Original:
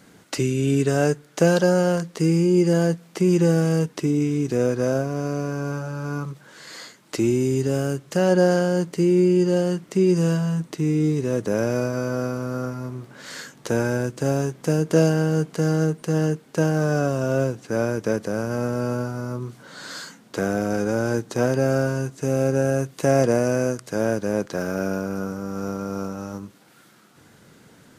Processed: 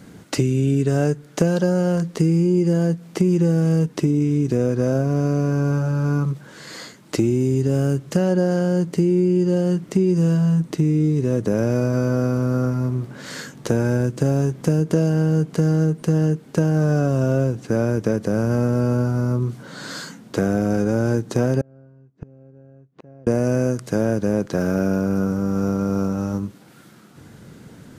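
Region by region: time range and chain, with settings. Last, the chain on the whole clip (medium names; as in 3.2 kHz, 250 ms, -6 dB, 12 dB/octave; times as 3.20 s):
21.61–23.27 s: tape spacing loss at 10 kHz 40 dB + inverted gate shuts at -29 dBFS, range -33 dB
whole clip: bass shelf 350 Hz +10.5 dB; compression 4:1, threshold -18 dBFS; trim +2 dB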